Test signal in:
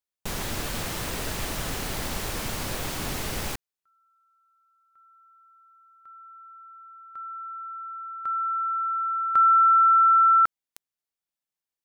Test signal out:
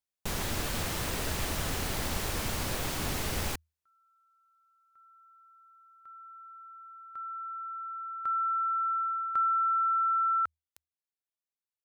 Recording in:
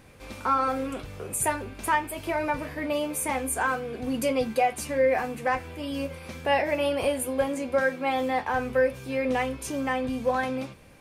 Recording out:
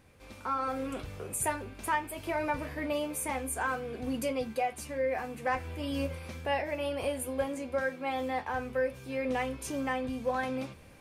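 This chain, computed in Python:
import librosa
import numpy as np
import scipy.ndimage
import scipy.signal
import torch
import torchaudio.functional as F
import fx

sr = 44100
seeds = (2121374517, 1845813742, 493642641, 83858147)

y = fx.peak_eq(x, sr, hz=79.0, db=8.0, octaves=0.21)
y = fx.rider(y, sr, range_db=4, speed_s=0.5)
y = y * librosa.db_to_amplitude(-6.0)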